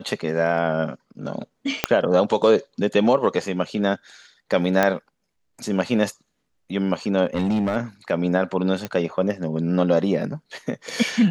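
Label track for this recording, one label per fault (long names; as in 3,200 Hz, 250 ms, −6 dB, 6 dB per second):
1.840000	1.840000	click −2 dBFS
4.830000	4.830000	click −5 dBFS
7.250000	7.770000	clipping −18 dBFS
8.850000	8.850000	click −13 dBFS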